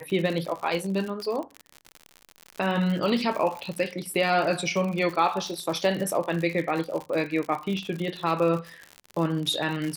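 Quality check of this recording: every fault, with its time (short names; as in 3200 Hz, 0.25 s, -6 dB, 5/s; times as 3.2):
crackle 82/s -30 dBFS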